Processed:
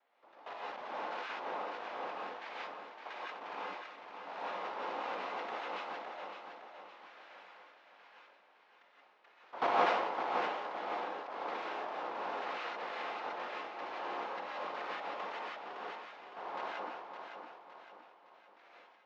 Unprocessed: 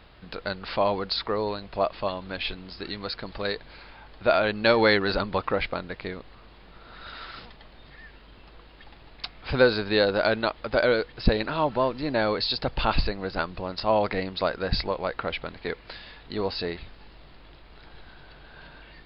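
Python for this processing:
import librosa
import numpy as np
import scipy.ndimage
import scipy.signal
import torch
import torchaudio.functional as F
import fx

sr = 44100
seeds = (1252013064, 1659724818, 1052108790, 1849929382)

y = fx.noise_vocoder(x, sr, seeds[0], bands=2)
y = fx.level_steps(y, sr, step_db=16)
y = fx.bandpass_edges(y, sr, low_hz=780.0, high_hz=2100.0)
y = fx.air_absorb(y, sr, metres=190.0)
y = fx.echo_feedback(y, sr, ms=562, feedback_pct=44, wet_db=-7)
y = fx.rev_gated(y, sr, seeds[1], gate_ms=200, shape='rising', drr_db=-5.5)
y = fx.sustainer(y, sr, db_per_s=39.0)
y = y * 10.0 ** (-6.5 / 20.0)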